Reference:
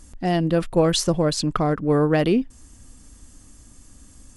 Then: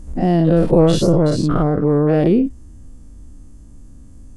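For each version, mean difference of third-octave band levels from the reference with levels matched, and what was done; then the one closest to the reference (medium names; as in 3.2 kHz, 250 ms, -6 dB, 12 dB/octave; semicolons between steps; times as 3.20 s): 6.0 dB: every event in the spectrogram widened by 120 ms; tilt shelf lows +9 dB, about 890 Hz; gain riding 2 s; trim -4 dB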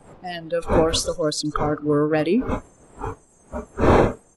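9.0 dB: wind noise 580 Hz -24 dBFS; on a send: feedback delay 130 ms, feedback 44%, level -22 dB; on the sum: spectral noise reduction 17 dB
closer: first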